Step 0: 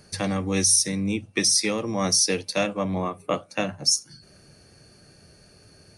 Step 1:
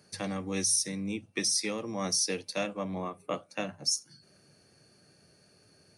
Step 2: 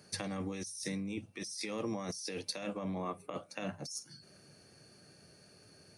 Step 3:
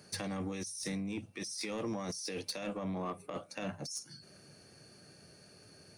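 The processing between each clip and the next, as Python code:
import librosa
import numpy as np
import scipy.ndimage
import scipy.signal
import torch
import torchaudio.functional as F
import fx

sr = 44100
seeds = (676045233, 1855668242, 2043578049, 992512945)

y1 = scipy.signal.sosfilt(scipy.signal.butter(2, 120.0, 'highpass', fs=sr, output='sos'), x)
y1 = y1 * librosa.db_to_amplitude(-8.0)
y2 = fx.over_compress(y1, sr, threshold_db=-37.0, ratio=-1.0)
y2 = y2 * librosa.db_to_amplitude(-2.5)
y3 = 10.0 ** (-32.0 / 20.0) * np.tanh(y2 / 10.0 ** (-32.0 / 20.0))
y3 = y3 * librosa.db_to_amplitude(2.0)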